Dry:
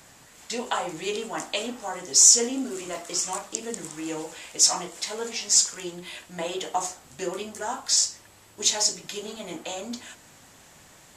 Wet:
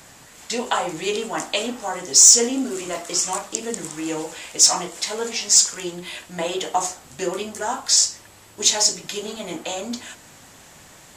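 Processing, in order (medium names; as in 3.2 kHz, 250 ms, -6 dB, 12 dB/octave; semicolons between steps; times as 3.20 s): saturation -5.5 dBFS, distortion -23 dB; trim +5.5 dB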